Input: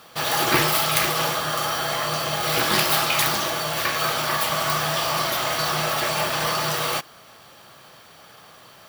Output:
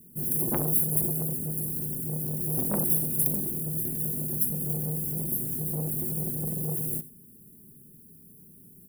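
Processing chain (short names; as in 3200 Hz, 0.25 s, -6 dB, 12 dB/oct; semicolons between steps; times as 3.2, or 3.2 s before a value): inverse Chebyshev band-stop 610–6000 Hz, stop band 40 dB; comb 4.8 ms, depth 42%; on a send: echo 90 ms -18.5 dB; on the sum: core saturation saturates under 2200 Hz; gain +3 dB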